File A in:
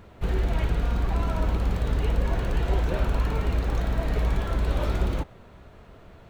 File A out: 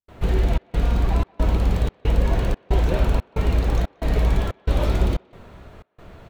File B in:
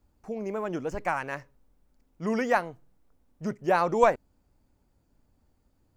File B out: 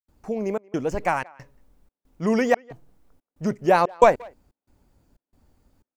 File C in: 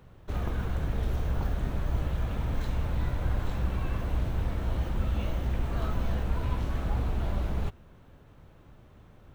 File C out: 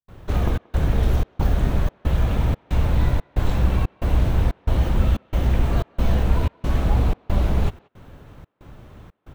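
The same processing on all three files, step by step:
dynamic EQ 1400 Hz, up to -4 dB, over -47 dBFS, Q 1.6; step gate ".xxxxxx." 183 bpm -60 dB; speakerphone echo 0.18 s, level -24 dB; match loudness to -23 LUFS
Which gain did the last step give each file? +5.5, +7.0, +10.5 dB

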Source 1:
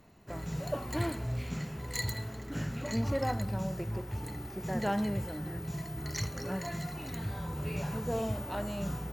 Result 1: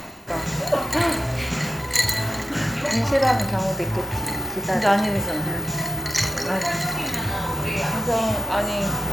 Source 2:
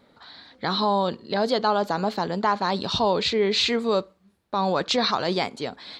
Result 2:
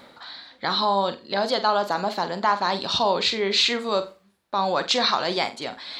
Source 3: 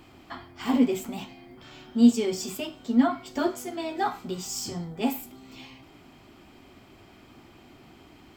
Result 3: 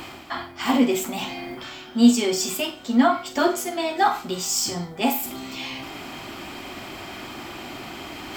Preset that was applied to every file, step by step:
low shelf 330 Hz -11 dB; notch 440 Hz, Q 12; reverse; upward compressor, threshold -35 dBFS; reverse; flutter echo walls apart 7.8 m, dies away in 0.25 s; match loudness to -23 LUFS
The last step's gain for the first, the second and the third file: +15.5, +2.5, +9.5 dB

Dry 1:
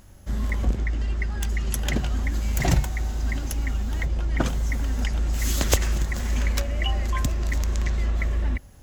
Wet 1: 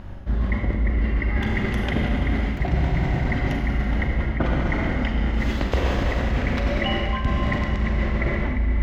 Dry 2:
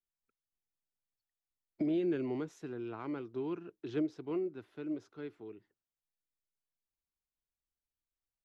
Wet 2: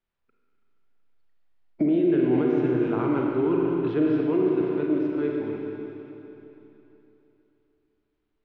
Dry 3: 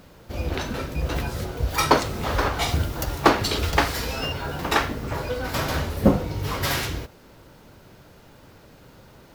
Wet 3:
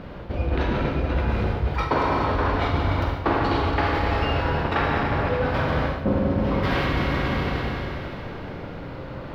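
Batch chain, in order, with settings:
air absorption 360 m; Schroeder reverb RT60 3.3 s, combs from 32 ms, DRR -1.5 dB; reverse; compressor 6:1, threshold -32 dBFS; reverse; match loudness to -24 LUFS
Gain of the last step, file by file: +13.0, +14.0, +11.5 dB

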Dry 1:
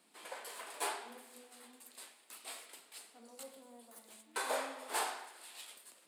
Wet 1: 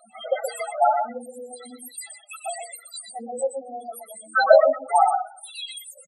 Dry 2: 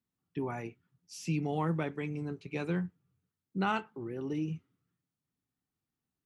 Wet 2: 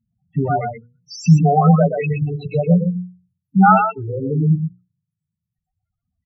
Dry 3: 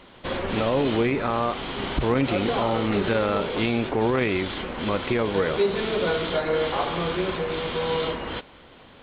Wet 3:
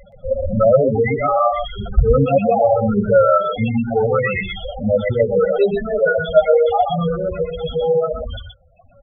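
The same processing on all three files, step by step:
reverb removal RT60 1.6 s; comb 1.5 ms, depth 83%; loudest bins only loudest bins 4; notches 60/120/180/240/300/360/420/480 Hz; on a send: echo 0.123 s -6.5 dB; on the sum: normalise peaks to -1.5 dBFS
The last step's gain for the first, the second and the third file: +25.0, +21.0, +11.5 dB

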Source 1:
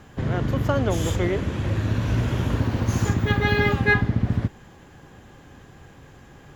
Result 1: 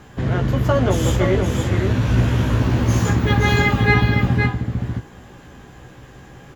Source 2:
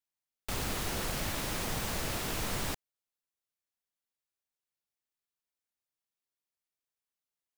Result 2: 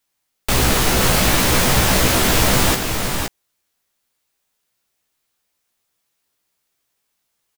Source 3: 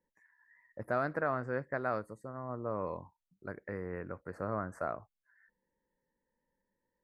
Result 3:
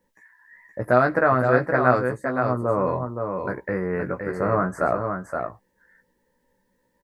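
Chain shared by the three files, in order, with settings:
doubler 16 ms -5 dB; on a send: echo 0.519 s -5.5 dB; on the sum: normalise peaks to -1.5 dBFS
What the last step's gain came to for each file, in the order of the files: +3.0, +17.0, +12.5 dB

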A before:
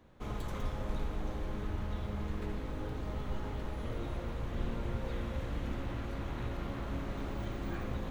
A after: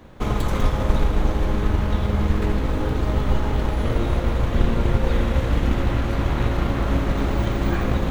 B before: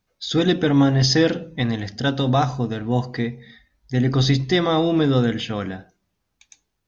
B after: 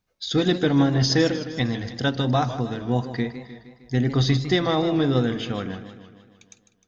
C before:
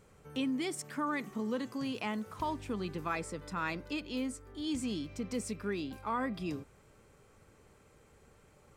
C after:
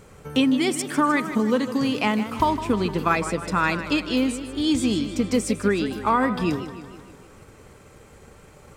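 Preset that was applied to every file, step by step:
transient shaper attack +3 dB, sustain -2 dB; warbling echo 0.154 s, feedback 57%, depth 128 cents, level -12 dB; match loudness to -23 LUFS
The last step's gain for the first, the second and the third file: +15.5, -3.5, +13.0 dB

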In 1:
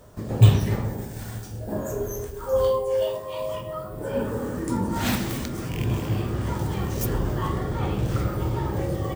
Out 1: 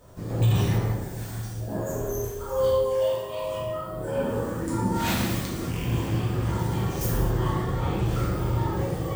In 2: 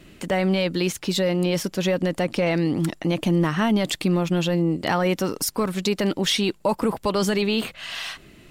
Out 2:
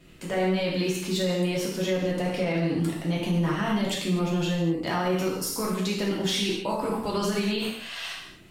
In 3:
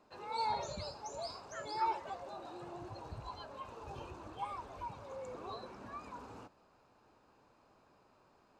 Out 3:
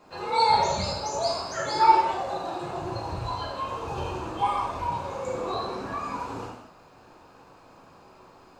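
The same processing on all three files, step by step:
non-linear reverb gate 0.28 s falling, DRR -4.5 dB; maximiser +7 dB; match loudness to -27 LUFS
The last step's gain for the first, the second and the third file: -12.5, -16.0, +2.5 dB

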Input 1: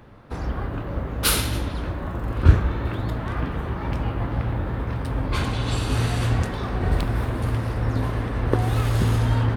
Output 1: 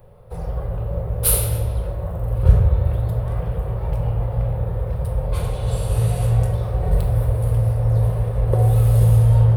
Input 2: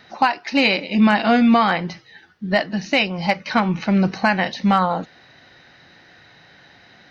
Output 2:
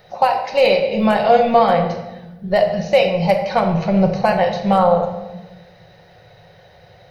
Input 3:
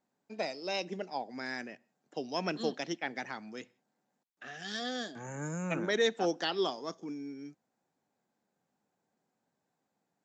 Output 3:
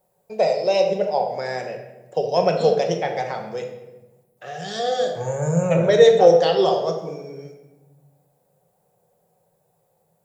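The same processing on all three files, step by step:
EQ curve 100 Hz 0 dB, 170 Hz -5 dB, 270 Hz -26 dB, 480 Hz +3 dB, 1500 Hz -15 dB, 3100 Hz -12 dB, 6500 Hz -11 dB, 10000 Hz +4 dB; shoebox room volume 520 m³, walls mixed, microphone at 1 m; normalise peaks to -1.5 dBFS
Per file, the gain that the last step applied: +2.0, +7.5, +18.0 dB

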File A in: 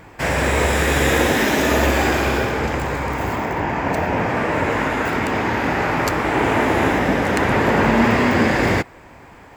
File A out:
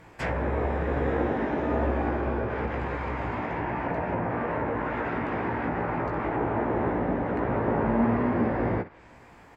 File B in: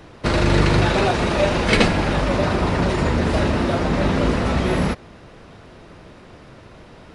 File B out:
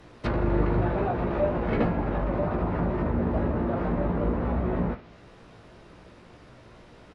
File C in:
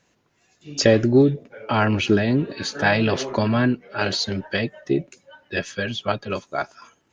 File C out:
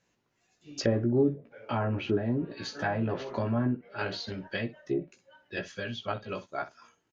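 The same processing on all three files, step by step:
early reflections 17 ms -5.5 dB, 64 ms -15 dB; treble ducked by the level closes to 1100 Hz, closed at -14 dBFS; normalise peaks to -12 dBFS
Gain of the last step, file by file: -9.0, -8.0, -10.5 dB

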